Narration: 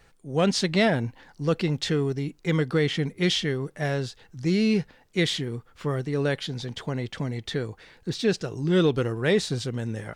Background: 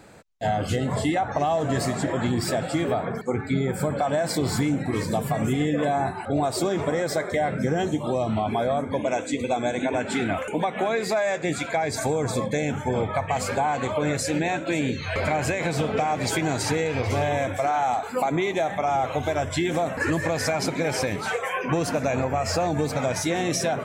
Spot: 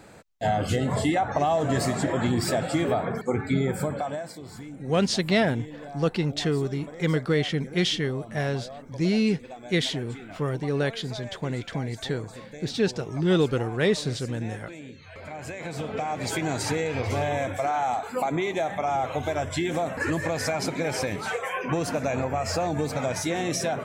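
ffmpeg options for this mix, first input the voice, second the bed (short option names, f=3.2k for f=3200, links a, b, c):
-filter_complex "[0:a]adelay=4550,volume=-0.5dB[a];[1:a]volume=14.5dB,afade=t=out:st=3.64:d=0.71:silence=0.141254,afade=t=in:st=15.21:d=1.33:silence=0.188365[b];[a][b]amix=inputs=2:normalize=0"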